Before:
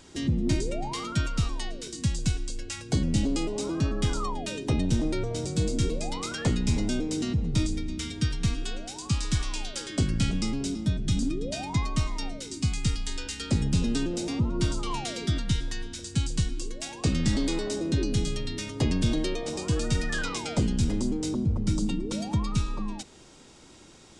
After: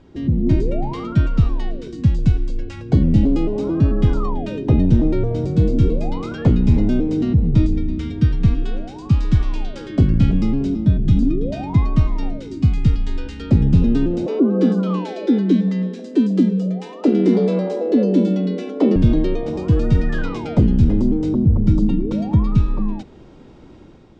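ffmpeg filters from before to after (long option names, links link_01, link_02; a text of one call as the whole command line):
ffmpeg -i in.wav -filter_complex "[0:a]asettb=1/sr,asplit=3[link_01][link_02][link_03];[link_01]atrim=end=5.744[link_04];[link_02]atrim=start=5.74:end=6.68,asetpts=PTS-STARTPTS,afade=type=in:duration=0.004:curve=qsin,afade=type=out:start_time=0.936:duration=0.004:curve=qsin,bandreject=frequency=1900:width=12[link_05];[link_03]atrim=start=6.676[link_06];[link_04][link_05]acrossfade=duration=0.004:curve1=hsin:curve2=qsin[link_07];[link_07][link_06]acrossfade=duration=0.004:curve1=qsin:curve2=hsin,asettb=1/sr,asplit=3[link_08][link_09][link_10];[link_08]atrim=end=14.264[link_11];[link_09]atrim=start=14.26:end=18.96,asetpts=PTS-STARTPTS,afade=type=in:duration=0.004:curve=qsin,afade=type=out:start_time=4.696:duration=0.004:curve=qsin,afreqshift=160[link_12];[link_10]atrim=start=18.956[link_13];[link_11][link_12]acrossfade=duration=0.004:curve1=hsin:curve2=qsin[link_14];[link_14][link_13]acrossfade=duration=0.004:curve1=qsin:curve2=hsin,lowpass=3300,tiltshelf=frequency=870:gain=7,dynaudnorm=framelen=130:gausssize=7:maxgain=5.5dB" out.wav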